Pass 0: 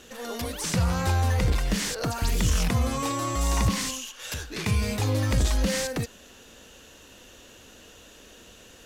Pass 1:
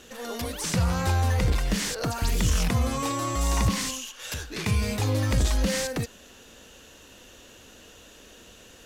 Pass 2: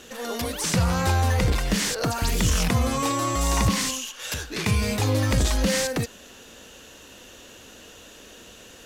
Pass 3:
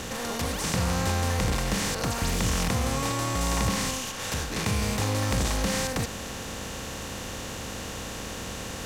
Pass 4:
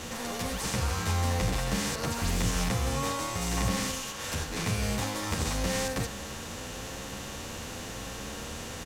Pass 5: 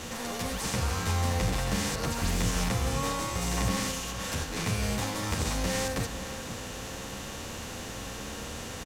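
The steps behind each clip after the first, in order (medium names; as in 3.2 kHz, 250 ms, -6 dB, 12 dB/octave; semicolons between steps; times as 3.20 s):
no audible change
bass shelf 82 Hz -5.5 dB; trim +4 dB
spectral levelling over time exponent 0.4; trim -8.5 dB
endless flanger 10.1 ms +0.93 Hz
echo from a far wall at 88 m, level -11 dB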